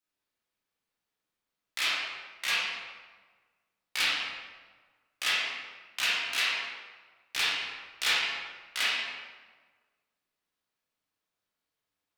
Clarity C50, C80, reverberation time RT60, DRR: -2.5 dB, 0.5 dB, 1.4 s, -9.0 dB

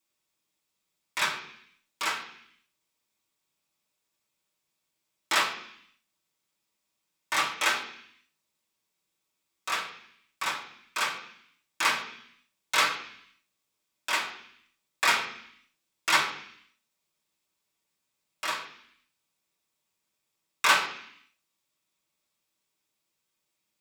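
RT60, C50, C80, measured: 0.65 s, 8.0 dB, 11.0 dB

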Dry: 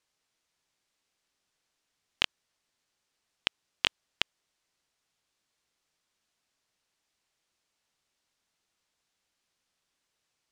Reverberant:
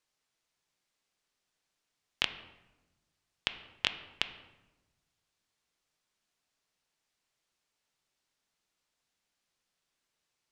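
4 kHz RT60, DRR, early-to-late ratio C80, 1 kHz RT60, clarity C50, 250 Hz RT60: 0.70 s, 9.0 dB, 13.5 dB, 1.0 s, 11.5 dB, 1.5 s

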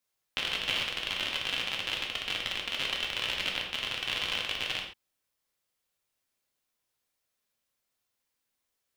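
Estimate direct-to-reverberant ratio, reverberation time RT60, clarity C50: -1.0 dB, no single decay rate, 4.5 dB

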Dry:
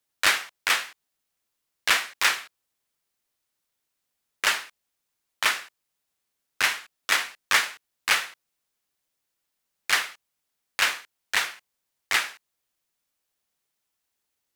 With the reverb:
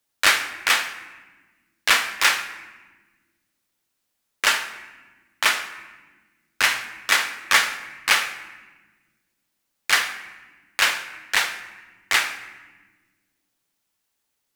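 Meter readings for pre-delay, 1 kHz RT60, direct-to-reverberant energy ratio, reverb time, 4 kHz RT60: 3 ms, 1.2 s, 8.0 dB, 1.4 s, 0.90 s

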